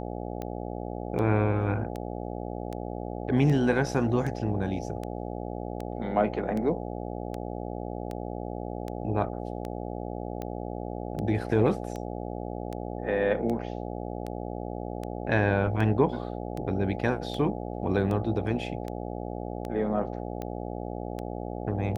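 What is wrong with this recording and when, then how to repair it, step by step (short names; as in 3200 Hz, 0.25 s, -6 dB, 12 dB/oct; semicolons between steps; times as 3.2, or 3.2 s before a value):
buzz 60 Hz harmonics 14 -35 dBFS
tick 78 rpm -22 dBFS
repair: de-click; de-hum 60 Hz, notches 14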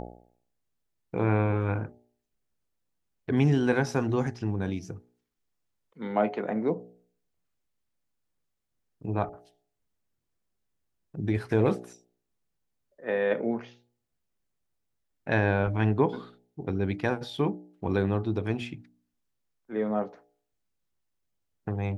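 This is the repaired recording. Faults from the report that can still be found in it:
none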